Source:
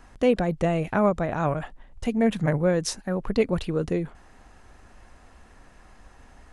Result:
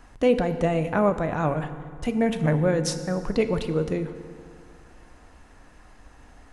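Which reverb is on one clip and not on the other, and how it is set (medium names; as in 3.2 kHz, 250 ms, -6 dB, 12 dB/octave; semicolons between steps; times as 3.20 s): FDN reverb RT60 2.1 s, low-frequency decay 1.1×, high-frequency decay 0.7×, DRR 9 dB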